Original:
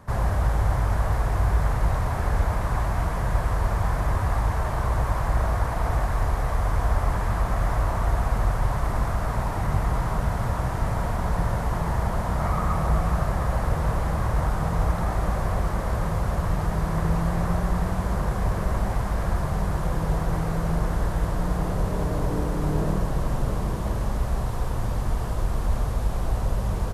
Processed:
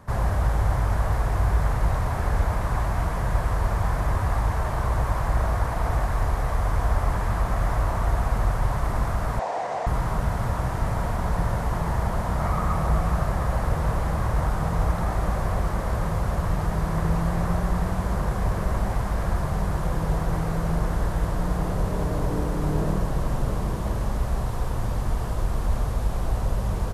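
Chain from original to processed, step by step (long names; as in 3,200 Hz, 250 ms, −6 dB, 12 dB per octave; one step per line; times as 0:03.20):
0:09.39–0:09.87: loudspeaker in its box 470–7,600 Hz, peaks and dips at 500 Hz +8 dB, 710 Hz +10 dB, 1,300 Hz −6 dB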